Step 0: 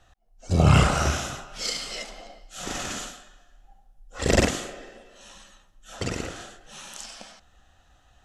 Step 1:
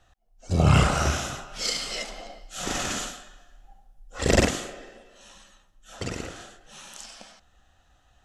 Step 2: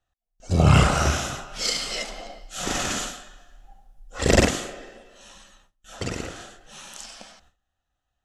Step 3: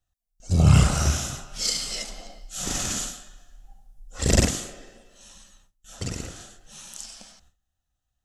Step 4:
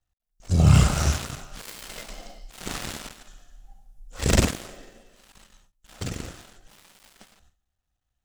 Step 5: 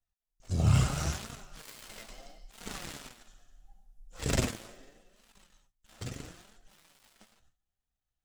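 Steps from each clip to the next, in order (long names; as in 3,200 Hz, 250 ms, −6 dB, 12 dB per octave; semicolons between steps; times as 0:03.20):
speech leveller within 3 dB 2 s
noise gate with hold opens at −48 dBFS; level +2.5 dB
bass and treble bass +9 dB, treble +11 dB; level −7.5 dB
gap after every zero crossing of 0.12 ms
flanger 0.76 Hz, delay 4.1 ms, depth 5.3 ms, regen +48%; level −4.5 dB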